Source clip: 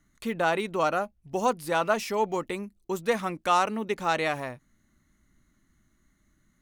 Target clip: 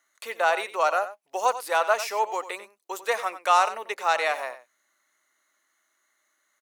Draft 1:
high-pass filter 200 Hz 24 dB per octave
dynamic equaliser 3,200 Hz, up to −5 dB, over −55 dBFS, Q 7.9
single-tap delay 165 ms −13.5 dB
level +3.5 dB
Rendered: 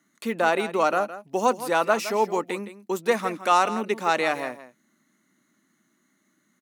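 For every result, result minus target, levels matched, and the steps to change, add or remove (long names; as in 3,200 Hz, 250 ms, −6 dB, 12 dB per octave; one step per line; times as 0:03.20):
250 Hz band +17.0 dB; echo 72 ms late
change: high-pass filter 540 Hz 24 dB per octave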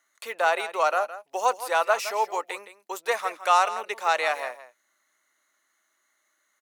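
echo 72 ms late
change: single-tap delay 93 ms −13.5 dB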